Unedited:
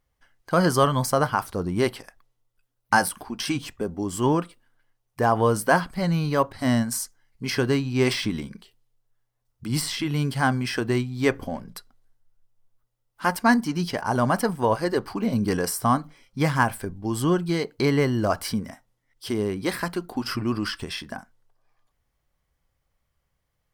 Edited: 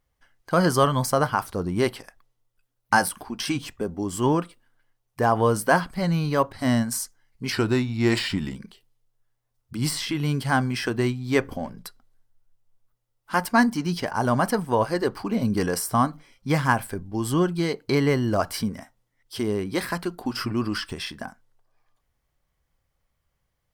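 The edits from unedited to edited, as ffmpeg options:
-filter_complex "[0:a]asplit=3[s0][s1][s2];[s0]atrim=end=7.524[s3];[s1]atrim=start=7.52:end=8.46,asetpts=PTS-STARTPTS,asetrate=40131,aresample=44100[s4];[s2]atrim=start=8.456[s5];[s3][s4]acrossfade=d=0.004:c1=hsin:c2=hsin[s6];[s6][s5]acrossfade=d=0.004:c1=hsin:c2=hsin"

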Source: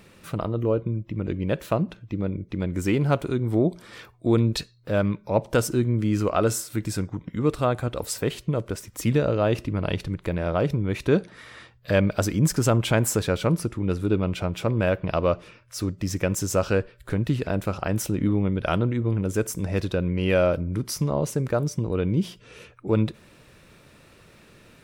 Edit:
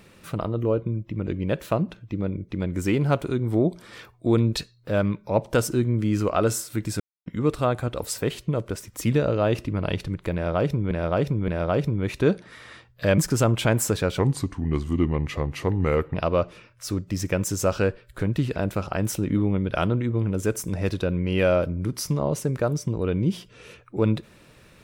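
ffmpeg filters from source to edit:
-filter_complex "[0:a]asplit=8[s0][s1][s2][s3][s4][s5][s6][s7];[s0]atrim=end=7,asetpts=PTS-STARTPTS,afade=t=out:st=6.996:d=0.004:c=hsin[s8];[s1]atrim=start=7:end=7.26,asetpts=PTS-STARTPTS,volume=0[s9];[s2]atrim=start=7.26:end=10.912,asetpts=PTS-STARTPTS,afade=t=in:d=0.004:c=hsin[s10];[s3]atrim=start=10.338:end=10.912[s11];[s4]atrim=start=10.338:end=12.042[s12];[s5]atrim=start=12.438:end=13.454[s13];[s6]atrim=start=13.45:end=15.05,asetpts=PTS-STARTPTS,asetrate=36162,aresample=44100[s14];[s7]atrim=start=15.046[s15];[s8][s9][s10]concat=n=3:v=0:a=1[s16];[s16][s11]acrossfade=d=0.004:c1=hsin:c2=hsin[s17];[s17][s12]acrossfade=d=0.004:c1=hsin:c2=hsin[s18];[s18][s13]acrossfade=d=0.004:c1=hsin:c2=hsin[s19];[s19][s14]acrossfade=d=0.004:c1=hsin:c2=hsin[s20];[s20][s15]acrossfade=d=0.004:c1=hsin:c2=hsin"

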